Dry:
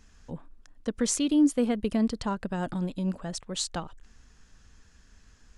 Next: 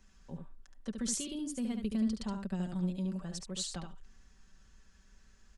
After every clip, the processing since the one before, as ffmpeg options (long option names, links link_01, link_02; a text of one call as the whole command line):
ffmpeg -i in.wav -filter_complex "[0:a]acrossover=split=280|3000[link_01][link_02][link_03];[link_02]acompressor=threshold=-43dB:ratio=2[link_04];[link_01][link_04][link_03]amix=inputs=3:normalize=0,aecho=1:1:5.2:0.54,aecho=1:1:72:0.501,volume=-7.5dB" out.wav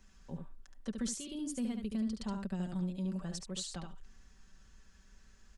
ffmpeg -i in.wav -af "alimiter=level_in=5dB:limit=-24dB:level=0:latency=1:release=404,volume=-5dB,volume=1dB" out.wav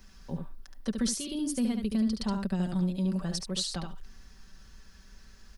ffmpeg -i in.wav -af "aexciter=amount=1.4:drive=3.5:freq=4100,volume=7.5dB" out.wav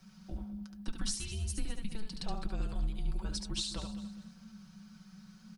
ffmpeg -i in.wav -af "afreqshift=-220,flanger=delay=4.4:depth=2:regen=-70:speed=0.68:shape=sinusoidal,aecho=1:1:204|408|612:0.2|0.0678|0.0231" out.wav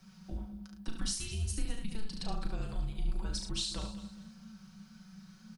ffmpeg -i in.wav -filter_complex "[0:a]asplit=2[link_01][link_02];[link_02]adelay=36,volume=-6.5dB[link_03];[link_01][link_03]amix=inputs=2:normalize=0" out.wav